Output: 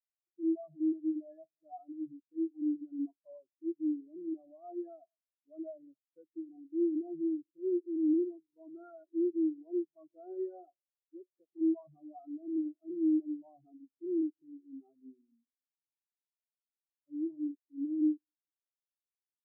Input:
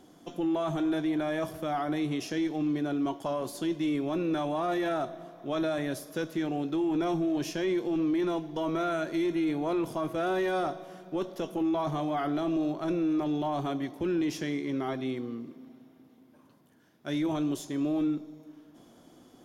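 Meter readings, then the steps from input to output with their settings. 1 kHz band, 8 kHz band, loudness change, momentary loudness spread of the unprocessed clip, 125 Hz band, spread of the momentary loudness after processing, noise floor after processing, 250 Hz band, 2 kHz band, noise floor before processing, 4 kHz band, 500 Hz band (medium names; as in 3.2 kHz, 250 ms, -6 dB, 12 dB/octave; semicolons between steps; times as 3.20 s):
under -20 dB, under -30 dB, -5.0 dB, 7 LU, under -30 dB, 20 LU, under -85 dBFS, -5.0 dB, under -40 dB, -58 dBFS, under -40 dB, -9.0 dB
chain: spectral contrast expander 4:1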